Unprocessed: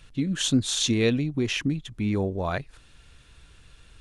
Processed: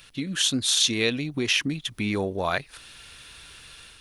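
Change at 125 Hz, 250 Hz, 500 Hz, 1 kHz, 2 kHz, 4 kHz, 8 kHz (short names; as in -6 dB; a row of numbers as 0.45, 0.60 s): -5.5, -3.5, -1.0, +3.5, +5.0, +5.5, +4.0 dB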